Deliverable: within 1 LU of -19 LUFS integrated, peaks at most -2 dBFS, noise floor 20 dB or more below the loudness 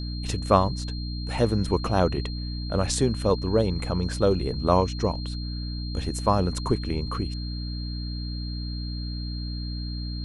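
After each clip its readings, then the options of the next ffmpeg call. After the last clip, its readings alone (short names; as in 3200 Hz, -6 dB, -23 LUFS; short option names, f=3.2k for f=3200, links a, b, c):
hum 60 Hz; harmonics up to 300 Hz; hum level -29 dBFS; steady tone 4200 Hz; tone level -39 dBFS; loudness -27.0 LUFS; peak -4.5 dBFS; loudness target -19.0 LUFS
-> -af "bandreject=f=60:t=h:w=4,bandreject=f=120:t=h:w=4,bandreject=f=180:t=h:w=4,bandreject=f=240:t=h:w=4,bandreject=f=300:t=h:w=4"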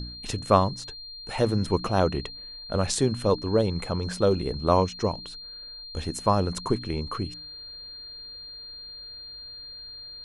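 hum none; steady tone 4200 Hz; tone level -39 dBFS
-> -af "bandreject=f=4.2k:w=30"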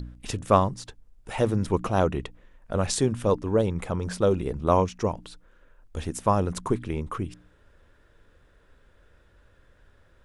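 steady tone none; loudness -26.5 LUFS; peak -5.0 dBFS; loudness target -19.0 LUFS
-> -af "volume=7.5dB,alimiter=limit=-2dB:level=0:latency=1"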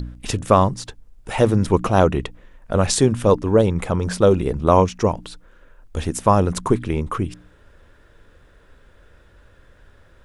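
loudness -19.5 LUFS; peak -2.0 dBFS; noise floor -52 dBFS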